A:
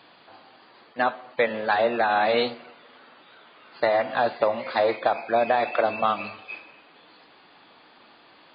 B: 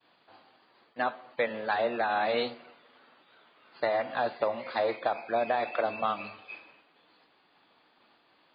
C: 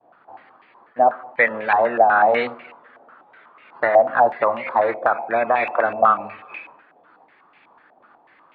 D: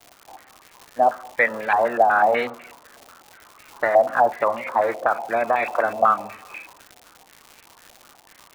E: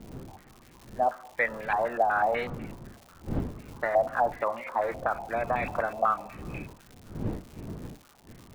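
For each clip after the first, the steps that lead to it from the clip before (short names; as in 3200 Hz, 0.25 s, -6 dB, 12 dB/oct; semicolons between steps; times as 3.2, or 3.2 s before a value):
expander -48 dBFS; gain -6.5 dB
stepped low-pass 8.1 Hz 710–2300 Hz; gain +6.5 dB
crackle 230/s -30 dBFS; gain -2 dB
wind noise 250 Hz -33 dBFS; gain -8 dB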